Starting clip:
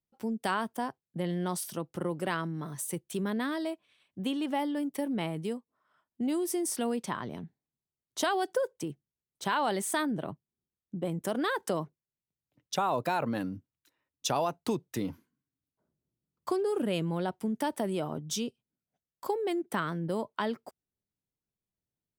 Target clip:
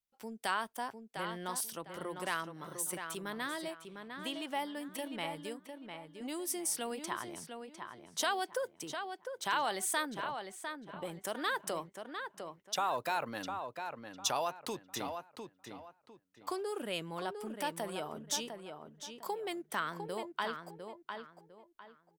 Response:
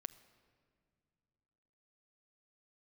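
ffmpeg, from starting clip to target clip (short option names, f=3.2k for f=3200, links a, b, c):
-filter_complex "[0:a]equalizer=f=160:w=0.34:g=-14.5,asplit=2[a][b];[b]adelay=703,lowpass=f=3.3k:p=1,volume=-6.5dB,asplit=2[c][d];[d]adelay=703,lowpass=f=3.3k:p=1,volume=0.29,asplit=2[e][f];[f]adelay=703,lowpass=f=3.3k:p=1,volume=0.29,asplit=2[g][h];[h]adelay=703,lowpass=f=3.3k:p=1,volume=0.29[i];[c][e][g][i]amix=inputs=4:normalize=0[j];[a][j]amix=inputs=2:normalize=0"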